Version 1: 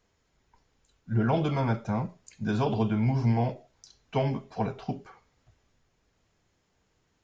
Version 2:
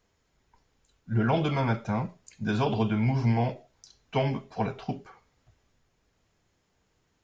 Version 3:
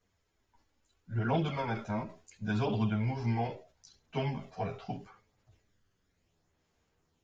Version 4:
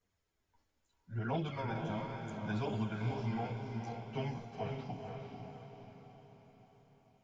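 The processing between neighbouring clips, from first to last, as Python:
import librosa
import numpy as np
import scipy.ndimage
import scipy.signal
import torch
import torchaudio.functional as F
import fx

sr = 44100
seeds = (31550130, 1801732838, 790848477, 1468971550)

y1 = fx.dynamic_eq(x, sr, hz=2500.0, q=0.71, threshold_db=-48.0, ratio=4.0, max_db=5)
y2 = fx.chorus_voices(y1, sr, voices=2, hz=0.37, base_ms=11, depth_ms=1.8, mix_pct=60)
y2 = fx.sustainer(y2, sr, db_per_s=140.0)
y2 = y2 * librosa.db_to_amplitude(-3.0)
y3 = fx.echo_diffused(y2, sr, ms=484, feedback_pct=51, wet_db=-4.0)
y3 = y3 * librosa.db_to_amplitude(-6.0)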